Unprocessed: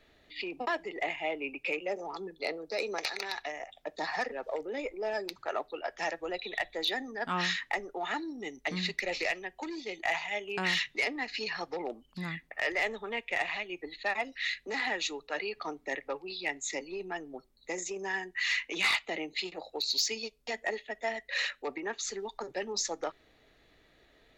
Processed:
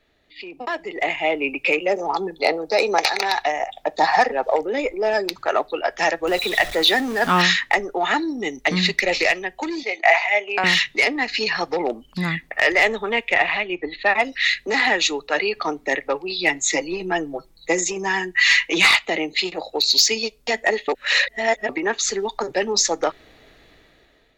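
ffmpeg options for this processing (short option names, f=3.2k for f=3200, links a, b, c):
-filter_complex "[0:a]asettb=1/sr,asplit=3[a][b][c];[a]atrim=end=2.094[d];[b]atrim=start=2.09:end=4.64,asetpts=PTS-STARTPTS,afade=t=in:d=0.004:c=qsin,afade=t=out:st=2.546:d=0.004:c=qsin,equalizer=f=810:t=o:w=0.51:g=8.5[e];[c]atrim=start=4.636[f];[d][e]acrossfade=d=0.004:c1=hsin:c2=qsin[g];[g][f]acrossfade=d=0.004:c1=qsin:c2=hsin,asettb=1/sr,asplit=3[h][i][j];[h]atrim=end=6.274[k];[i]atrim=start=6.27:end=7.42,asetpts=PTS-STARTPTS,afade=t=in:d=0.004:c=qsin,afade=t=out:st=1.146:d=0.004:c=qsin,aeval=exprs='val(0)+0.5*0.00891*sgn(val(0))':c=same[l];[j]atrim=start=7.416[m];[k][l]acrossfade=d=0.004:c1=hsin:c2=qsin[n];[n][m]acrossfade=d=0.004:c1=qsin:c2=hsin,asettb=1/sr,asplit=3[o][p][q];[o]atrim=end=9.834[r];[p]atrim=start=9.83:end=10.64,asetpts=PTS-STARTPTS,afade=t=in:d=0.004:c=qsin,afade=t=out:st=0.806:d=0.004:c=qsin,highpass=f=300:w=0.5412,highpass=f=300:w=1.3066,equalizer=f=360:t=q:w=4:g=-7,equalizer=f=690:t=q:w=4:g=8,equalizer=f=2.2k:t=q:w=4:g=7,equalizer=f=3.3k:t=q:w=4:g=-7,lowpass=f=6k:w=0.5412,lowpass=f=6k:w=1.3066[s];[q]atrim=start=10.636[t];[r][s]acrossfade=d=0.004:c1=hsin:c2=qsin[u];[u][t]acrossfade=d=0.004:c1=qsin:c2=hsin,asettb=1/sr,asplit=3[v][w][x];[v]atrim=end=13.344[y];[w]atrim=start=13.34:end=14.19,asetpts=PTS-STARTPTS,afade=t=in:d=0.004:c=qsin,afade=t=out:st=0.846:d=0.004:c=qsin,lowpass=3.3k[z];[x]atrim=start=14.186[aa];[y][z]acrossfade=d=0.004:c1=hsin:c2=qsin[ab];[ab][aa]acrossfade=d=0.004:c1=qsin:c2=hsin,asettb=1/sr,asplit=3[ac][ad][ae];[ac]atrim=end=16.384[af];[ad]atrim=start=16.38:end=18.86,asetpts=PTS-STARTPTS,afade=t=in:d=0.004:c=qsin,afade=t=out:st=2.476:d=0.004:c=qsin,aecho=1:1:6.1:0.77,atrim=end_sample=109368[ag];[ae]atrim=start=18.856[ah];[af][ag]acrossfade=d=0.004:c1=hsin:c2=qsin[ai];[ai][ah]acrossfade=d=0.004:c1=qsin:c2=hsin,asplit=3[aj][ak][al];[aj]atrim=end=20.882[am];[ak]atrim=start=20.878:end=21.692,asetpts=PTS-STARTPTS,areverse[an];[al]atrim=start=21.688[ao];[am][an]acrossfade=d=0.004:c1=hsin:c2=hsin[ap];[ap][ao]acrossfade=d=0.004:c1=hsin:c2=hsin,dynaudnorm=f=270:g=7:m=15dB,volume=-1dB"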